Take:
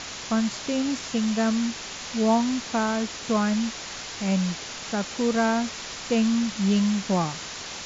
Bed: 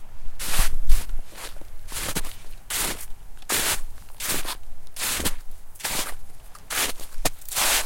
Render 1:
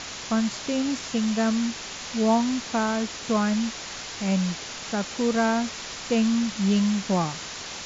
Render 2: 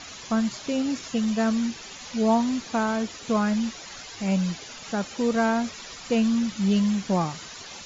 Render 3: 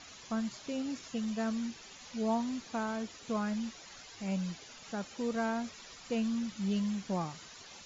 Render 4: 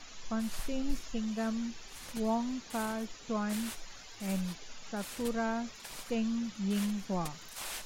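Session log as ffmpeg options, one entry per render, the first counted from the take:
-af anull
-af "afftdn=nr=11:nf=-37"
-af "volume=0.299"
-filter_complex "[1:a]volume=0.1[s0];[0:a][s0]amix=inputs=2:normalize=0"

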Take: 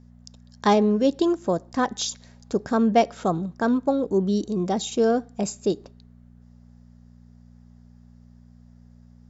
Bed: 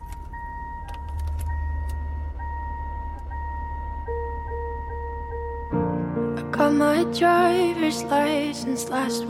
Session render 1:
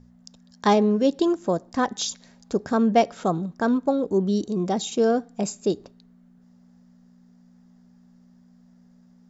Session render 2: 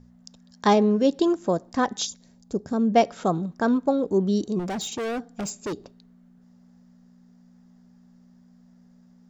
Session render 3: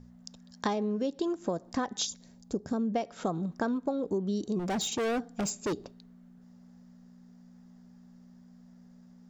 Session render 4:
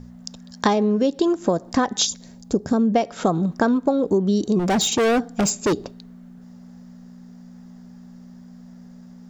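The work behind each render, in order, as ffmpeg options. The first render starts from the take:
-af "bandreject=f=60:t=h:w=4,bandreject=f=120:t=h:w=4"
-filter_complex "[0:a]asplit=3[s0][s1][s2];[s0]afade=t=out:st=2.05:d=0.02[s3];[s1]equalizer=f=1800:w=0.35:g=-12,afade=t=in:st=2.05:d=0.02,afade=t=out:st=2.93:d=0.02[s4];[s2]afade=t=in:st=2.93:d=0.02[s5];[s3][s4][s5]amix=inputs=3:normalize=0,asettb=1/sr,asplit=3[s6][s7][s8];[s6]atrim=end=4.594[s9];[s7]atrim=start=4.59:end=5.73,asetpts=PTS-STARTPTS,afade=t=in:d=0.004:c=qsin,afade=t=out:st=1.136:d=0.004:c=qsin,asoftclip=type=hard:threshold=0.0447[s10];[s8]atrim=start=5.726[s11];[s9][s10]acrossfade=d=0.004:c1=hsin:c2=qsin[s12];[s12][s11]acrossfade=d=0.004:c1=qsin:c2=hsin"
-af "acompressor=threshold=0.0447:ratio=12"
-af "volume=3.76"

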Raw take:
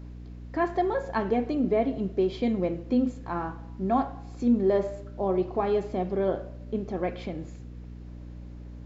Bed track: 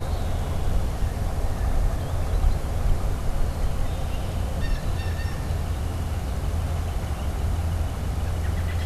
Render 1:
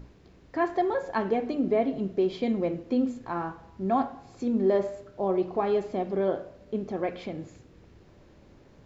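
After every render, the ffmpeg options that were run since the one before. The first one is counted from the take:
-af "bandreject=f=60:t=h:w=6,bandreject=f=120:t=h:w=6,bandreject=f=180:t=h:w=6,bandreject=f=240:t=h:w=6,bandreject=f=300:t=h:w=6"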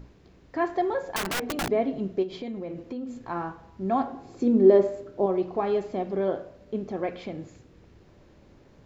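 -filter_complex "[0:a]asettb=1/sr,asplit=3[s0][s1][s2];[s0]atrim=end=1.164[s3];[s1]atrim=start=1.16:end=1.7,asetpts=PTS-STARTPTS,afade=t=in:d=0.004:c=qsin,afade=t=out:st=0.536:d=0.004:c=qsin,aeval=exprs='(mod(15*val(0)+1,2)-1)/15':c=same[s4];[s2]atrim=start=1.696[s5];[s3][s4]acrossfade=d=0.004:c1=hsin:c2=qsin[s6];[s6][s5]acrossfade=d=0.004:c1=qsin:c2=hsin,asplit=3[s7][s8][s9];[s7]afade=t=out:st=2.22:d=0.02[s10];[s8]acompressor=threshold=0.0282:ratio=6:attack=3.2:release=140:knee=1:detection=peak,afade=t=in:st=2.22:d=0.02,afade=t=out:st=3.23:d=0.02[s11];[s9]afade=t=in:st=3.23:d=0.02[s12];[s10][s11][s12]amix=inputs=3:normalize=0,asettb=1/sr,asplit=3[s13][s14][s15];[s13]atrim=end=4.074[s16];[s14]atrim=start=4.07:end=5.26,asetpts=PTS-STARTPTS,afade=t=in:d=0.004:c=qsin,afade=t=out:st=1.186:d=0.004:c=qsin,equalizer=f=340:w=1.1:g=9[s17];[s15]atrim=start=5.256[s18];[s16][s17]acrossfade=d=0.004:c1=hsin:c2=qsin[s19];[s19][s18]acrossfade=d=0.004:c1=qsin:c2=hsin"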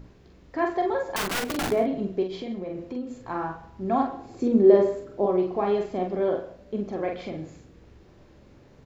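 -filter_complex "[0:a]asplit=2[s0][s1];[s1]adelay=44,volume=0.631[s2];[s0][s2]amix=inputs=2:normalize=0,aecho=1:1:134:0.119"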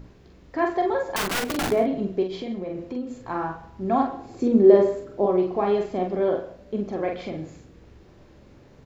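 -af "volume=1.26"

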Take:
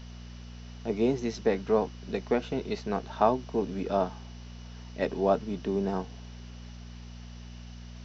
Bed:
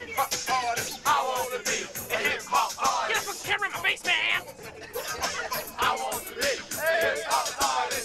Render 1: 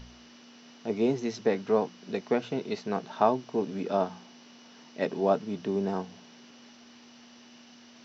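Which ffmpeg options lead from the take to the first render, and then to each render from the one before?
-af "bandreject=f=60:t=h:w=4,bandreject=f=120:t=h:w=4,bandreject=f=180:t=h:w=4"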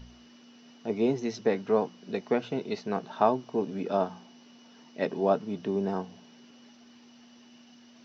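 -af "afftdn=nr=6:nf=-53"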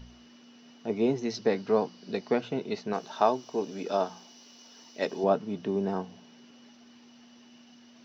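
-filter_complex "[0:a]asettb=1/sr,asplit=3[s0][s1][s2];[s0]atrim=end=1.304[s3];[s1]atrim=start=1.3:end=2.41,asetpts=PTS-STARTPTS,afade=t=in:d=0.004:c=qsin,afade=t=out:st=1.106:d=0.004:c=qsin,equalizer=f=4600:t=o:w=0.41:g=9[s4];[s2]atrim=start=2.406[s5];[s3][s4]acrossfade=d=0.004:c1=hsin:c2=qsin[s6];[s6][s5]acrossfade=d=0.004:c1=qsin:c2=hsin,asettb=1/sr,asplit=3[s7][s8][s9];[s7]atrim=end=2.934[s10];[s8]atrim=start=2.93:end=5.24,asetpts=PTS-STARTPTS,afade=t=in:d=0.004:c=qsin,afade=t=out:st=2.306:d=0.004:c=qsin,bass=f=250:g=-8,treble=f=4000:g=13[s11];[s9]atrim=start=5.236[s12];[s10][s11]acrossfade=d=0.004:c1=hsin:c2=qsin[s13];[s13][s12]acrossfade=d=0.004:c1=qsin:c2=hsin"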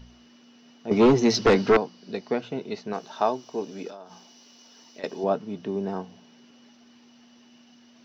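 -filter_complex "[0:a]asettb=1/sr,asplit=3[s0][s1][s2];[s0]atrim=end=0.914[s3];[s1]atrim=start=0.91:end=1.77,asetpts=PTS-STARTPTS,afade=t=in:d=0.004:c=qsin,afade=t=out:st=0.856:d=0.004:c=qsin,aeval=exprs='0.251*sin(PI/2*2.82*val(0)/0.251)':c=same[s4];[s2]atrim=start=1.766[s5];[s3][s4]acrossfade=d=0.004:c1=hsin:c2=qsin[s6];[s6][s5]acrossfade=d=0.004:c1=qsin:c2=hsin,asettb=1/sr,asplit=3[s7][s8][s9];[s7]atrim=end=3.884[s10];[s8]atrim=start=3.88:end=5.04,asetpts=PTS-STARTPTS,afade=t=in:d=0.004:c=qsin,afade=t=out:st=1.156:d=0.004:c=qsin,acompressor=threshold=0.0126:ratio=10:attack=3.2:release=140:knee=1:detection=peak[s11];[s9]atrim=start=5.036[s12];[s10][s11]acrossfade=d=0.004:c1=hsin:c2=qsin[s13];[s13][s12]acrossfade=d=0.004:c1=qsin:c2=hsin"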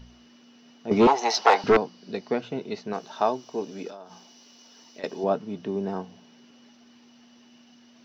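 -filter_complex "[0:a]asettb=1/sr,asplit=3[s0][s1][s2];[s0]atrim=end=1.074[s3];[s1]atrim=start=1.07:end=1.64,asetpts=PTS-STARTPTS,afade=t=in:d=0.004:c=qsin,afade=t=out:st=0.566:d=0.004:c=qsin,highpass=f=800:t=q:w=5.5[s4];[s2]atrim=start=1.636[s5];[s3][s4]acrossfade=d=0.004:c1=hsin:c2=qsin[s6];[s6][s5]acrossfade=d=0.004:c1=qsin:c2=hsin"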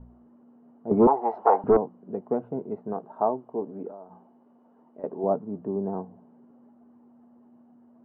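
-af "lowpass=f=1000:w=0.5412,lowpass=f=1000:w=1.3066"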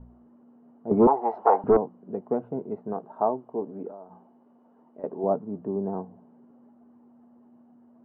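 -af anull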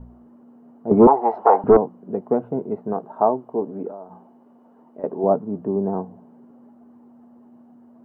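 -af "volume=2.11,alimiter=limit=0.708:level=0:latency=1"

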